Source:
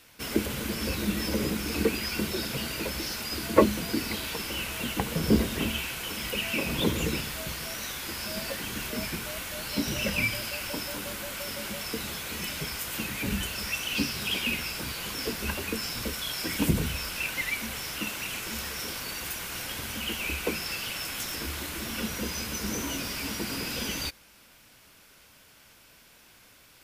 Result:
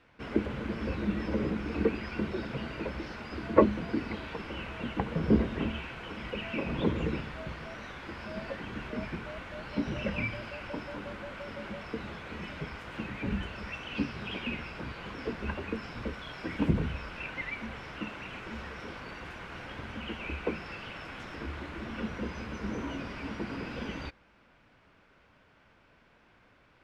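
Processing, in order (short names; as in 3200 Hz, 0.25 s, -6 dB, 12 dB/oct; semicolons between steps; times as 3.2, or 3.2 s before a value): LPF 1800 Hz 12 dB/oct; gain -1.5 dB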